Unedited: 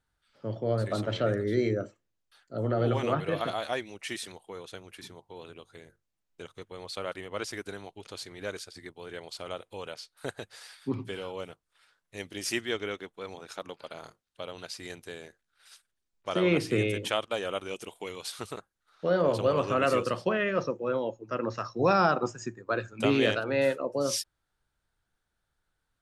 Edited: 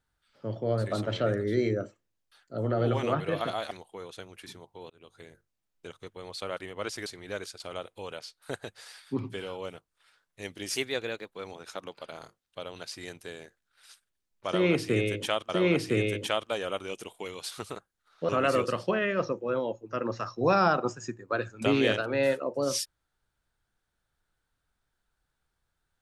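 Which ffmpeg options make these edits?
-filter_complex "[0:a]asplit=9[s0][s1][s2][s3][s4][s5][s6][s7][s8];[s0]atrim=end=3.712[s9];[s1]atrim=start=4.258:end=5.45,asetpts=PTS-STARTPTS,afade=t=out:st=1.188:d=0.004:c=hsin[s10];[s2]atrim=start=5.45:end=7.612,asetpts=PTS-STARTPTS,afade=t=in:d=0.26[s11];[s3]atrim=start=8.188:end=8.732[s12];[s4]atrim=start=9.348:end=12.514[s13];[s5]atrim=start=12.51:end=13.18,asetpts=PTS-STARTPTS,asetrate=49392,aresample=44100,atrim=end_sample=26381,asetpts=PTS-STARTPTS[s14];[s6]atrim=start=13.176:end=17.312[s15];[s7]atrim=start=16.298:end=19.102[s16];[s8]atrim=start=19.668[s17];[s10][s11]concat=n=2:v=0:a=1[s18];[s9][s18]acrossfade=d=0.004:c1=hsin:c2=hsin[s19];[s19][s12]acrossfade=d=0.004:c1=hsin:c2=hsin[s20];[s20][s13]acrossfade=d=0.004:c1=hsin:c2=hsin[s21];[s21][s14]acrossfade=d=0.004:c1=hsin:c2=hsin[s22];[s22][s15]acrossfade=d=0.004:c1=hsin:c2=hsin[s23];[s23][s16]acrossfade=d=0.004:c1=hsin:c2=hsin[s24];[s24][s17]acrossfade=d=0.004:c1=hsin:c2=hsin"

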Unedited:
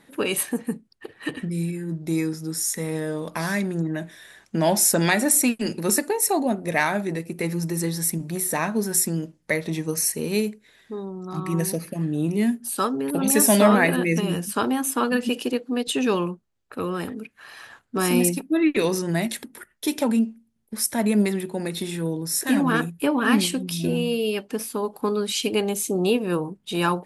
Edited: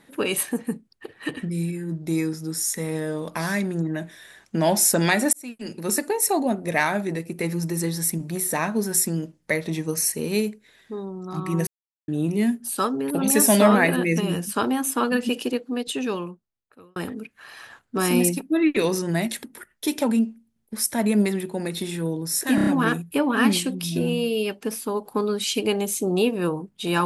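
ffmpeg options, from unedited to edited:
-filter_complex "[0:a]asplit=9[s0][s1][s2][s3][s4][s5][s6][s7][s8];[s0]atrim=end=5.33,asetpts=PTS-STARTPTS,afade=t=out:st=5.326:d=0.004:c=hsin[s9];[s1]atrim=start=5.33:end=11.67,asetpts=PTS-STARTPTS,afade=t=in:d=0.81,afade=t=out:st=6.336:d=0.004:c=hsin[s10];[s2]atrim=start=11.67:end=12.08,asetpts=PTS-STARTPTS,volume=0[s11];[s3]atrim=start=12.08:end=16.96,asetpts=PTS-STARTPTS,afade=t=in:d=0.004:c=hsin,afade=t=out:st=3.35:d=1.53[s12];[s4]atrim=start=16.96:end=22.582,asetpts=PTS-STARTPTS,afade=t=in:d=0.004:c=hsin[s13];[s5]atrim=start=22.548:end=22.582[s14];[s6]atrim=start=22.548:end=22.582[s15];[s7]atrim=start=22.548:end=22.582[s16];[s8]atrim=start=22.548[s17];[s9][s10][s11][s12][s13]concat=n=5:v=0:a=1[s18];[s18][s14]acrossfade=d=0.004:c1=hsin:c2=hsin[s19];[s19][s15]acrossfade=d=0.004:c1=hsin:c2=hsin[s20];[s20][s16]acrossfade=d=0.004:c1=hsin:c2=hsin[s21];[s21][s17]acrossfade=d=0.004:c1=hsin:c2=hsin"

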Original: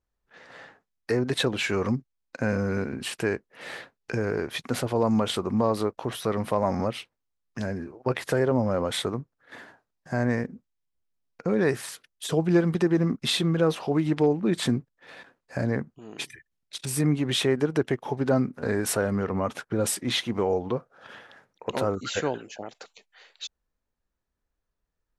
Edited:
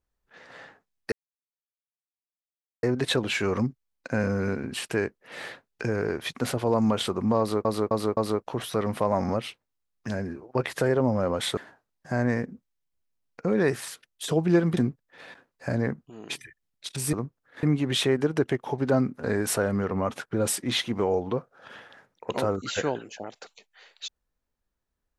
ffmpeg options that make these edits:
-filter_complex "[0:a]asplit=9[s0][s1][s2][s3][s4][s5][s6][s7][s8];[s0]atrim=end=1.12,asetpts=PTS-STARTPTS,afade=t=out:st=1.116:d=0.004:c=hsin,apad=pad_dur=1.71[s9];[s1]atrim=start=1.12:end=5.942,asetpts=PTS-STARTPTS,afade=t=in:d=0.004:c=hsin[s10];[s2]atrim=start=5.678:end=5.942[s11];[s3]atrim=start=5.678:end=5.942[s12];[s4]atrim=start=5.678:end=9.082[s13];[s5]atrim=start=9.578:end=12.782[s14];[s6]atrim=start=14.658:end=17.022[s15];[s7]atrim=start=9.078:end=9.582[s16];[s8]atrim=start=17.018[s17];[s9][s10]concat=n=2:v=0:a=1[s18];[s18][s11]acrossfade=d=0.004:c1=hsin:c2=hsin[s19];[s19][s12]acrossfade=d=0.004:c1=hsin:c2=hsin[s20];[s20][s13]acrossfade=d=0.004:c1=hsin:c2=hsin[s21];[s21][s14]acrossfade=d=0.004:c1=hsin:c2=hsin[s22];[s22][s15]acrossfade=d=0.004:c1=hsin:c2=hsin[s23];[s23][s16]acrossfade=d=0.004:c1=hsin:c2=hsin[s24];[s24][s17]acrossfade=d=0.004:c1=hsin:c2=hsin"

